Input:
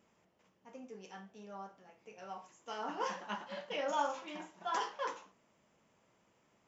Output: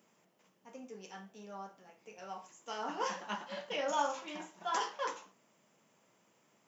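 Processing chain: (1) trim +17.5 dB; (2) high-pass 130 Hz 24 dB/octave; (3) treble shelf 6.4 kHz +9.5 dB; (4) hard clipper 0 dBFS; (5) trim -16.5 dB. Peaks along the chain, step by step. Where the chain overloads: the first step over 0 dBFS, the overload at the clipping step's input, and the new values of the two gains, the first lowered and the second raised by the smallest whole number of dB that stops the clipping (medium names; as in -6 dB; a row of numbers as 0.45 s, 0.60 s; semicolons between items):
-3.0 dBFS, -3.0 dBFS, -2.5 dBFS, -2.5 dBFS, -19.0 dBFS; nothing clips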